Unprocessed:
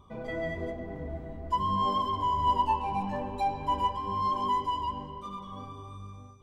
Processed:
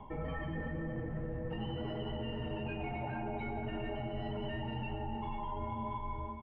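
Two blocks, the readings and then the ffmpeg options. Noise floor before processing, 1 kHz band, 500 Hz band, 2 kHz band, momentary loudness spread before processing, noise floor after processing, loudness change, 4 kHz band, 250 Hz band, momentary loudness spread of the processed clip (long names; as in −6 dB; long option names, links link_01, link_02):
−46 dBFS, −15.0 dB, −3.0 dB, −1.0 dB, 15 LU, −41 dBFS, −9.0 dB, −8.0 dB, −1.5 dB, 1 LU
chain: -af "highpass=frequency=95:width=0.5412,highpass=frequency=95:width=1.3066,afftfilt=real='re*lt(hypot(re,im),0.0708)':imag='im*lt(hypot(re,im),0.0708)':win_size=1024:overlap=0.75,lowshelf=frequency=330:gain=3,highpass=frequency=160:width_type=q:width=0.5412,highpass=frequency=160:width_type=q:width=1.307,lowpass=frequency=2800:width_type=q:width=0.5176,lowpass=frequency=2800:width_type=q:width=0.7071,lowpass=frequency=2800:width_type=q:width=1.932,afreqshift=-170,alimiter=level_in=11.5dB:limit=-24dB:level=0:latency=1,volume=-11.5dB,equalizer=frequency=150:width_type=o:width=0.53:gain=4.5,aecho=1:1:464:0.211,areverse,acompressor=threshold=-46dB:ratio=16,areverse,volume=11.5dB"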